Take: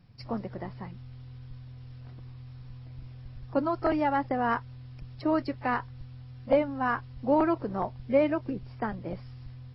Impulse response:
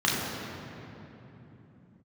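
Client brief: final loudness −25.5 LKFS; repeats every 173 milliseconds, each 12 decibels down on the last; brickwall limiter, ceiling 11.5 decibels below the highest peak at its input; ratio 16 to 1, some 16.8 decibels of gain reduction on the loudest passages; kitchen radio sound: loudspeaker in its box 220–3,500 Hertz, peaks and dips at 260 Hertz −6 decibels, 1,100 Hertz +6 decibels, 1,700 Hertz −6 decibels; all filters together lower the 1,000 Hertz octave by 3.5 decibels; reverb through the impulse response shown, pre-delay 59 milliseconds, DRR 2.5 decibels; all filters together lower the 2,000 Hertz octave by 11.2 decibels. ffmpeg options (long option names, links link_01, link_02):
-filter_complex "[0:a]equalizer=frequency=1000:width_type=o:gain=-4.5,equalizer=frequency=2000:width_type=o:gain=-9,acompressor=threshold=-36dB:ratio=16,alimiter=level_in=12dB:limit=-24dB:level=0:latency=1,volume=-12dB,aecho=1:1:173|346|519:0.251|0.0628|0.0157,asplit=2[link_01][link_02];[1:a]atrim=start_sample=2205,adelay=59[link_03];[link_02][link_03]afir=irnorm=-1:irlink=0,volume=-17.5dB[link_04];[link_01][link_04]amix=inputs=2:normalize=0,highpass=220,equalizer=frequency=260:width_type=q:width=4:gain=-6,equalizer=frequency=1100:width_type=q:width=4:gain=6,equalizer=frequency=1700:width_type=q:width=4:gain=-6,lowpass=frequency=3500:width=0.5412,lowpass=frequency=3500:width=1.3066,volume=21.5dB"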